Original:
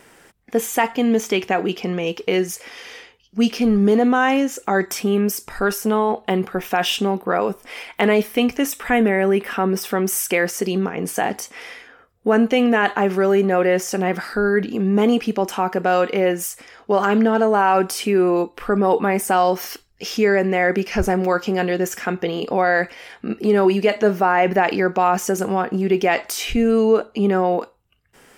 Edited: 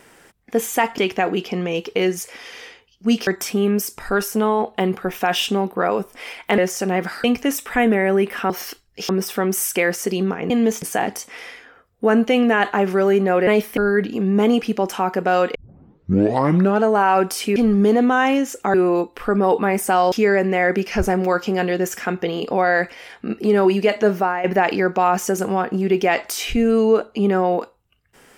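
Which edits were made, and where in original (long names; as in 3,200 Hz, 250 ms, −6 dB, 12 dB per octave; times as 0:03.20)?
0:00.98–0:01.30: move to 0:11.05
0:03.59–0:04.77: move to 0:18.15
0:08.08–0:08.38: swap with 0:13.70–0:14.36
0:16.14: tape start 1.28 s
0:19.53–0:20.12: move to 0:09.64
0:24.17–0:24.44: fade out, to −12.5 dB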